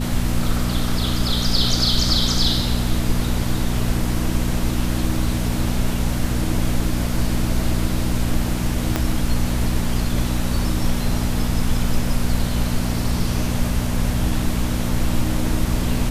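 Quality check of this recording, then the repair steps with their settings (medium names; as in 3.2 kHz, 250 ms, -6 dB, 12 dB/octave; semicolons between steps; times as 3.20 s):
hum 60 Hz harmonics 4 -24 dBFS
8.96 s: pop -5 dBFS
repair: de-click; de-hum 60 Hz, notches 4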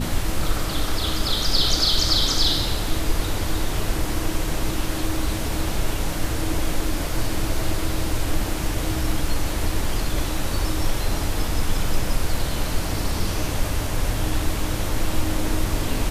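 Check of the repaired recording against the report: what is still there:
8.96 s: pop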